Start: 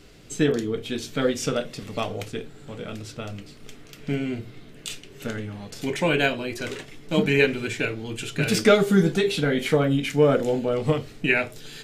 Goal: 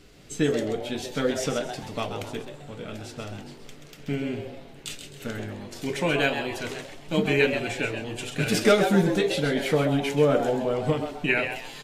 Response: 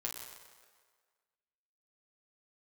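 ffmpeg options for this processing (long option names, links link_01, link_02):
-filter_complex "[0:a]asplit=5[link_01][link_02][link_03][link_04][link_05];[link_02]adelay=131,afreqshift=140,volume=-8dB[link_06];[link_03]adelay=262,afreqshift=280,volume=-17.1dB[link_07];[link_04]adelay=393,afreqshift=420,volume=-26.2dB[link_08];[link_05]adelay=524,afreqshift=560,volume=-35.4dB[link_09];[link_01][link_06][link_07][link_08][link_09]amix=inputs=5:normalize=0,volume=-2.5dB" -ar 48000 -c:a aac -b:a 64k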